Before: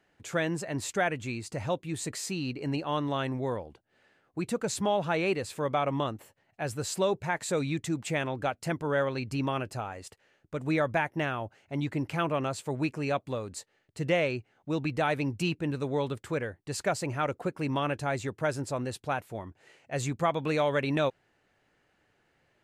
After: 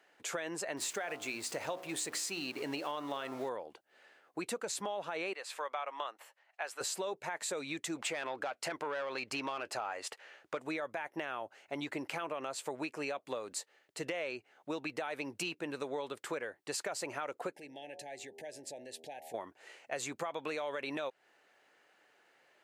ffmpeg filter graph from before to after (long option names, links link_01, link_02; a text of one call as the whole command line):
ffmpeg -i in.wav -filter_complex "[0:a]asettb=1/sr,asplit=3[link_01][link_02][link_03];[link_01]atrim=end=0.774[link_04];[link_02]atrim=start=0.77:end=3.49,asetpts=PTS-STARTPTS,afade=type=in:duration=0.004:curve=qsin,afade=type=out:start_time=2.716:duration=0.004:curve=qsin,aeval=exprs='val(0)+0.5*0.00631*sgn(val(0))':channel_layout=same,bandreject=frequency=61.59:width_type=h:width=4,bandreject=frequency=123.18:width_type=h:width=4,bandreject=frequency=184.77:width_type=h:width=4,bandreject=frequency=246.36:width_type=h:width=4,bandreject=frequency=307.95:width_type=h:width=4,bandreject=frequency=369.54:width_type=h:width=4,bandreject=frequency=431.13:width_type=h:width=4,bandreject=frequency=492.72:width_type=h:width=4,bandreject=frequency=554.31:width_type=h:width=4,bandreject=frequency=615.9:width_type=h:width=4,bandreject=frequency=677.49:width_type=h:width=4,bandreject=frequency=739.08:width_type=h:width=4,bandreject=frequency=800.67:width_type=h:width=4,bandreject=frequency=862.26:width_type=h:width=4,bandreject=frequency=923.85:width_type=h:width=4,bandreject=frequency=985.44:width_type=h:width=4,bandreject=frequency=1047.03:width_type=h:width=4,bandreject=frequency=1108.62:width_type=h:width=4,bandreject=frequency=1170.21:width_type=h:width=4,bandreject=frequency=1231.8:width_type=h:width=4,bandreject=frequency=1293.39:width_type=h:width=4,bandreject=frequency=1354.98:width_type=h:width=4,bandreject=frequency=1416.57:width_type=h:width=4[link_05];[link_03]atrim=start=3.486[link_06];[link_04][link_05]acrossfade=duration=0.004:curve1=hsin:curve2=qsin[link_07];[link_07][link_06]acrossfade=duration=0.004:curve1=qsin:curve2=hsin,asettb=1/sr,asplit=3[link_08][link_09][link_10];[link_08]atrim=end=5.334[link_11];[link_09]atrim=start=5.33:end=6.81,asetpts=PTS-STARTPTS,afade=type=in:duration=0.004:curve=qsin,afade=type=out:start_time=1.476:duration=0.004:curve=qsin,highpass=820,aemphasis=mode=reproduction:type=cd[link_12];[link_10]atrim=start=6.806[link_13];[link_11][link_12]acrossfade=duration=0.004:curve1=hsin:curve2=qsin[link_14];[link_14][link_13]acrossfade=duration=0.004:curve1=qsin:curve2=hsin,asettb=1/sr,asplit=3[link_15][link_16][link_17];[link_15]atrim=end=7.964[link_18];[link_16]atrim=start=7.96:end=10.6,asetpts=PTS-STARTPTS,afade=type=in:duration=0.004:curve=qsin,afade=type=out:start_time=2.636:duration=0.004:curve=qsin,equalizer=frequency=67:width_type=o:width=1.3:gain=11.5,asplit=2[link_19][link_20];[link_20]highpass=frequency=720:poles=1,volume=15dB,asoftclip=type=tanh:threshold=-16dB[link_21];[link_19][link_21]amix=inputs=2:normalize=0,lowpass=frequency=3500:poles=1,volume=-6dB[link_22];[link_17]atrim=start=10.596[link_23];[link_18][link_22]acrossfade=duration=0.004:curve1=hsin:curve2=qsin[link_24];[link_24][link_23]acrossfade=duration=0.004:curve1=qsin:curve2=hsin,asettb=1/sr,asplit=3[link_25][link_26][link_27];[link_25]atrim=end=17.554[link_28];[link_26]atrim=start=17.55:end=19.34,asetpts=PTS-STARTPTS,afade=type=in:duration=0.004:curve=qsin,afade=type=out:start_time=1.786:duration=0.004:curve=qsin,bandreject=frequency=80.08:width_type=h:width=4,bandreject=frequency=160.16:width_type=h:width=4,bandreject=frequency=240.24:width_type=h:width=4,bandreject=frequency=320.32:width_type=h:width=4,bandreject=frequency=400.4:width_type=h:width=4,bandreject=frequency=480.48:width_type=h:width=4,bandreject=frequency=560.56:width_type=h:width=4,bandreject=frequency=640.64:width_type=h:width=4,bandreject=frequency=720.72:width_type=h:width=4,bandreject=frequency=800.8:width_type=h:width=4,bandreject=frequency=880.88:width_type=h:width=4,bandreject=frequency=960.96:width_type=h:width=4,acompressor=threshold=-43dB:ratio=8:attack=3.2:release=140:knee=1:detection=peak,asuperstop=centerf=1200:order=12:qfactor=1.5[link_29];[link_27]atrim=start=19.336[link_30];[link_28][link_29]acrossfade=duration=0.004:curve1=hsin:curve2=qsin[link_31];[link_31][link_30]acrossfade=duration=0.004:curve1=qsin:curve2=hsin,highpass=450,alimiter=limit=-23dB:level=0:latency=1:release=37,acompressor=threshold=-39dB:ratio=6,volume=4dB" out.wav